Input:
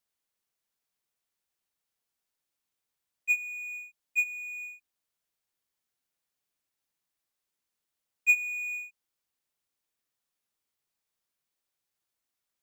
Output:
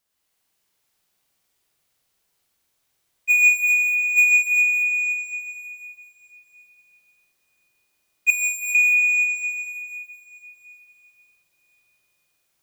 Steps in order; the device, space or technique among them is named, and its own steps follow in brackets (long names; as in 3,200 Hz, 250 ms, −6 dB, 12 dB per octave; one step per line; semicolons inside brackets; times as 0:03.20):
tunnel (flutter between parallel walls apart 8.3 metres, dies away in 0.57 s; convolution reverb RT60 4.0 s, pre-delay 89 ms, DRR −4 dB)
0:03.30–0:04.23: high-shelf EQ 12,000 Hz +6 dB
0:08.30–0:08.75: Butterworth high-pass 2,700 Hz 96 dB per octave
level +7 dB